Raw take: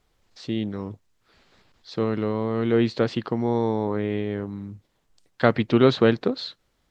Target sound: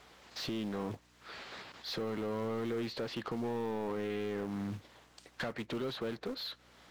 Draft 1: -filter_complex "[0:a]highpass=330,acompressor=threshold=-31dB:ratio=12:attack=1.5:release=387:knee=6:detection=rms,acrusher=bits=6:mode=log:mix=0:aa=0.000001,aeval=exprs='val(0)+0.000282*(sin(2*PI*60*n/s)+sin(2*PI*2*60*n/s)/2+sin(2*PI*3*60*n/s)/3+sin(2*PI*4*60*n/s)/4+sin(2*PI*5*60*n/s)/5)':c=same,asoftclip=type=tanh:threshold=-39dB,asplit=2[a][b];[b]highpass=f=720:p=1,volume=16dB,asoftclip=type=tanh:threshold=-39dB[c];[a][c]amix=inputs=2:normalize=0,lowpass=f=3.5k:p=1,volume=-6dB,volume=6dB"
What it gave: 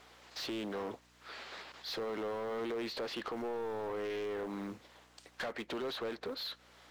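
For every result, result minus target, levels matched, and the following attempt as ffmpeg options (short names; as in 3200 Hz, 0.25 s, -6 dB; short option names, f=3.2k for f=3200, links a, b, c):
125 Hz band -9.5 dB; soft clip: distortion +8 dB
-filter_complex "[0:a]highpass=83,acompressor=threshold=-31dB:ratio=12:attack=1.5:release=387:knee=6:detection=rms,acrusher=bits=6:mode=log:mix=0:aa=0.000001,aeval=exprs='val(0)+0.000282*(sin(2*PI*60*n/s)+sin(2*PI*2*60*n/s)/2+sin(2*PI*3*60*n/s)/3+sin(2*PI*4*60*n/s)/4+sin(2*PI*5*60*n/s)/5)':c=same,asoftclip=type=tanh:threshold=-39dB,asplit=2[a][b];[b]highpass=f=720:p=1,volume=16dB,asoftclip=type=tanh:threshold=-39dB[c];[a][c]amix=inputs=2:normalize=0,lowpass=f=3.5k:p=1,volume=-6dB,volume=6dB"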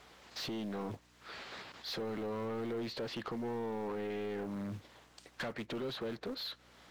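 soft clip: distortion +8 dB
-filter_complex "[0:a]highpass=83,acompressor=threshold=-31dB:ratio=12:attack=1.5:release=387:knee=6:detection=rms,acrusher=bits=6:mode=log:mix=0:aa=0.000001,aeval=exprs='val(0)+0.000282*(sin(2*PI*60*n/s)+sin(2*PI*2*60*n/s)/2+sin(2*PI*3*60*n/s)/3+sin(2*PI*4*60*n/s)/4+sin(2*PI*5*60*n/s)/5)':c=same,asoftclip=type=tanh:threshold=-31.5dB,asplit=2[a][b];[b]highpass=f=720:p=1,volume=16dB,asoftclip=type=tanh:threshold=-39dB[c];[a][c]amix=inputs=2:normalize=0,lowpass=f=3.5k:p=1,volume=-6dB,volume=6dB"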